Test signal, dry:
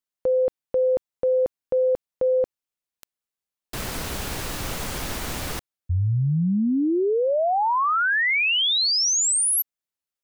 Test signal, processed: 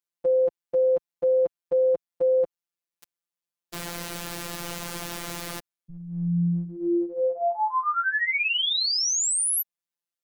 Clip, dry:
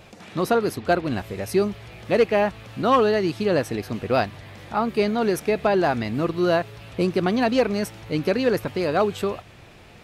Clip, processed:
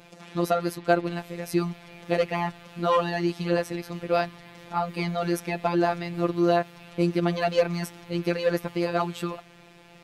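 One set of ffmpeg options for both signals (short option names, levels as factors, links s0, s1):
-af "highpass=f=75:p=1,afftfilt=real='hypot(re,im)*cos(PI*b)':imag='0':win_size=1024:overlap=0.75"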